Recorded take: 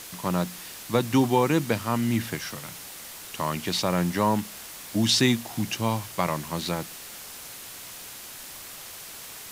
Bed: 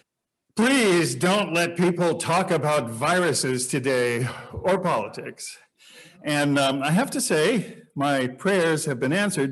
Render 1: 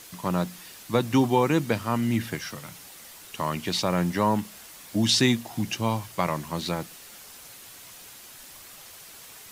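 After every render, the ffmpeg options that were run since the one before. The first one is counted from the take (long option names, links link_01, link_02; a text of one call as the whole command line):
ffmpeg -i in.wav -af "afftdn=noise_reduction=6:noise_floor=-42" out.wav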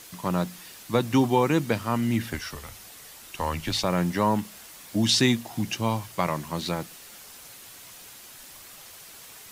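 ffmpeg -i in.wav -filter_complex "[0:a]asettb=1/sr,asplit=3[link_01][link_02][link_03];[link_01]atrim=end=2.334[link_04];[link_02]atrim=start=2.33:end=3.84,asetpts=PTS-STARTPTS,afade=type=in:duration=0.004:curve=qsin,afade=type=out:start_time=1.506:duration=0.004:curve=qsin,afreqshift=-73[link_05];[link_03]atrim=start=3.836[link_06];[link_04][link_05]acrossfade=duration=0.004:curve1=hsin:curve2=qsin[link_07];[link_07][link_06]acrossfade=duration=0.004:curve1=qsin:curve2=hsin" out.wav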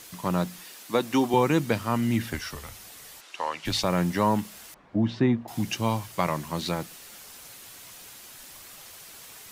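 ffmpeg -i in.wav -filter_complex "[0:a]asettb=1/sr,asplit=3[link_01][link_02][link_03];[link_01]atrim=end=0.644[link_04];[link_02]atrim=start=0.64:end=1.34,asetpts=PTS-STARTPTS,afade=type=in:duration=0.004:curve=qsin,afade=type=out:start_time=0.696:duration=0.004:curve=qsin,highpass=240[link_05];[link_03]atrim=start=1.336[link_06];[link_04][link_05]acrossfade=duration=0.004:curve1=hsin:curve2=qsin[link_07];[link_07][link_06]acrossfade=duration=0.004:curve1=qsin:curve2=hsin,asplit=3[link_08][link_09][link_10];[link_08]afade=type=out:start_time=3.2:duration=0.02[link_11];[link_09]highpass=480,lowpass=5700,afade=type=in:start_time=3.2:duration=0.02,afade=type=out:start_time=3.64:duration=0.02[link_12];[link_10]afade=type=in:start_time=3.64:duration=0.02[link_13];[link_11][link_12][link_13]amix=inputs=3:normalize=0,asettb=1/sr,asplit=3[link_14][link_15][link_16];[link_14]atrim=end=4.744[link_17];[link_15]atrim=start=4.74:end=5.48,asetpts=PTS-STARTPTS,afade=type=in:duration=0.004:curve=qsin,afade=type=out:start_time=0.736:duration=0.004:curve=qsin,lowpass=1200[link_18];[link_16]atrim=start=5.476[link_19];[link_17][link_18]acrossfade=duration=0.004:curve1=hsin:curve2=qsin[link_20];[link_20][link_19]acrossfade=duration=0.004:curve1=qsin:curve2=hsin" out.wav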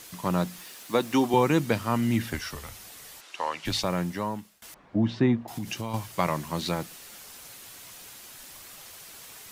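ffmpeg -i in.wav -filter_complex "[0:a]asettb=1/sr,asplit=3[link_01][link_02][link_03];[link_01]atrim=end=0.564[link_04];[link_02]atrim=start=0.56:end=1.13,asetpts=PTS-STARTPTS,afade=type=in:duration=0.004:curve=qsin,afade=type=out:start_time=0.566:duration=0.004:curve=qsin,acrusher=bits=7:mix=0:aa=0.5[link_05];[link_03]atrim=start=1.126[link_06];[link_04][link_05]acrossfade=duration=0.004:curve1=hsin:curve2=qsin[link_07];[link_07][link_06]acrossfade=duration=0.004:curve1=qsin:curve2=hsin,asettb=1/sr,asplit=3[link_08][link_09][link_10];[link_08]atrim=end=5.394[link_11];[link_09]atrim=start=5.39:end=5.94,asetpts=PTS-STARTPTS,afade=type=in:duration=0.004:curve=qsin,afade=type=out:start_time=0.546:duration=0.004:curve=qsin,acompressor=threshold=-28dB:ratio=12:attack=3.2:release=140:knee=1:detection=peak[link_12];[link_10]atrim=start=5.936[link_13];[link_11][link_12]acrossfade=duration=0.004:curve1=hsin:curve2=qsin[link_14];[link_14][link_13]acrossfade=duration=0.004:curve1=qsin:curve2=hsin,asplit=2[link_15][link_16];[link_15]atrim=end=4.62,asetpts=PTS-STARTPTS,afade=type=out:start_time=3.61:duration=1.01:silence=0.0668344[link_17];[link_16]atrim=start=4.62,asetpts=PTS-STARTPTS,afade=type=in:duration=0.004:curve=hsin:silence=0.0668344[link_18];[link_17][link_18]concat=n=2:v=0:a=1" out.wav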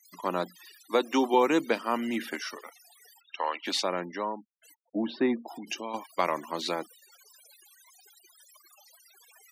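ffmpeg -i in.wav -af "highpass=frequency=270:width=0.5412,highpass=frequency=270:width=1.3066,afftfilt=real='re*gte(hypot(re,im),0.00891)':imag='im*gte(hypot(re,im),0.00891)':win_size=1024:overlap=0.75" out.wav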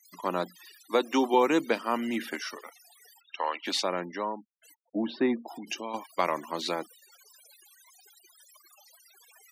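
ffmpeg -i in.wav -af anull out.wav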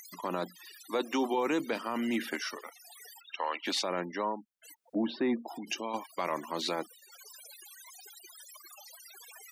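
ffmpeg -i in.wav -af "alimiter=limit=-21.5dB:level=0:latency=1:release=16,acompressor=mode=upward:threshold=-43dB:ratio=2.5" out.wav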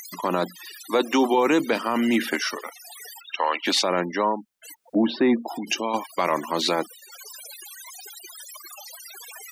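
ffmpeg -i in.wav -af "volume=10dB" out.wav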